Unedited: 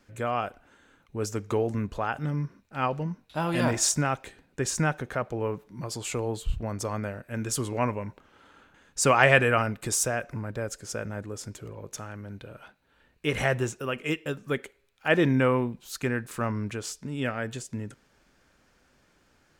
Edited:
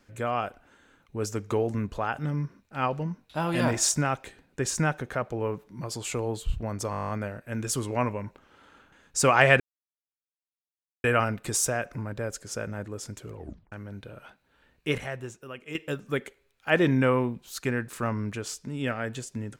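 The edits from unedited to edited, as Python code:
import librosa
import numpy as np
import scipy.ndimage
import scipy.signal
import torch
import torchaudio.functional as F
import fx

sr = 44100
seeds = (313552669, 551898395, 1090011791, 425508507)

y = fx.edit(x, sr, fx.stutter(start_s=6.91, slice_s=0.02, count=10),
    fx.insert_silence(at_s=9.42, length_s=1.44),
    fx.tape_stop(start_s=11.73, length_s=0.37),
    fx.clip_gain(start_s=13.36, length_s=0.77, db=-10.0), tone=tone)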